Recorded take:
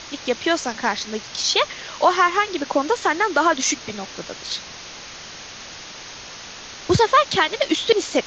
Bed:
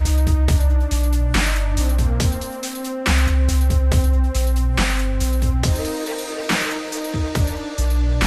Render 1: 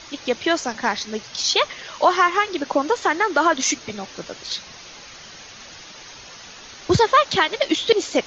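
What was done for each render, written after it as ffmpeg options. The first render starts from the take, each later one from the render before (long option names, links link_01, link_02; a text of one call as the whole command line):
ffmpeg -i in.wav -af "afftdn=noise_reduction=7:noise_floor=-38" out.wav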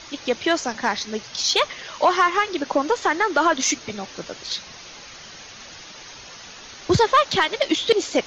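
ffmpeg -i in.wav -af "asoftclip=type=tanh:threshold=-6dB" out.wav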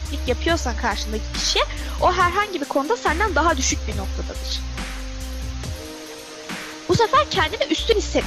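ffmpeg -i in.wav -i bed.wav -filter_complex "[1:a]volume=-11.5dB[link_01];[0:a][link_01]amix=inputs=2:normalize=0" out.wav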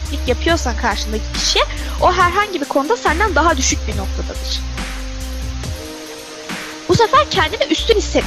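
ffmpeg -i in.wav -af "volume=5dB,alimiter=limit=-2dB:level=0:latency=1" out.wav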